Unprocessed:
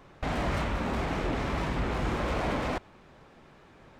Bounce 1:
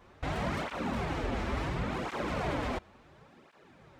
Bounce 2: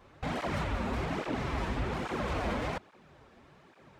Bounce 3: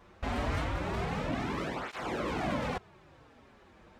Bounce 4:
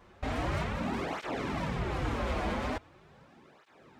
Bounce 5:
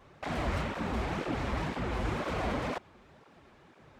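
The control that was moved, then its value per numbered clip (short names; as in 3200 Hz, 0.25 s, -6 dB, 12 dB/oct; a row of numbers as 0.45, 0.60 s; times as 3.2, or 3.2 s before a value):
tape flanging out of phase, nulls at: 0.71, 1.2, 0.26, 0.41, 2 Hz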